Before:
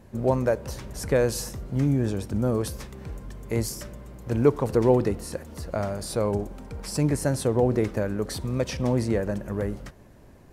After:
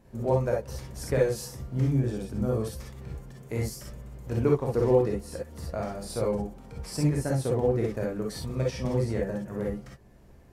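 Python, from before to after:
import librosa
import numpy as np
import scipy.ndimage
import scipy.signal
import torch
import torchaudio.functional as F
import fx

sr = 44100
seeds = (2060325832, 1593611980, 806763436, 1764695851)

y = fx.transient(x, sr, attack_db=2, sustain_db=-4)
y = fx.rev_gated(y, sr, seeds[0], gate_ms=80, shape='rising', drr_db=-1.5)
y = F.gain(torch.from_numpy(y), -8.0).numpy()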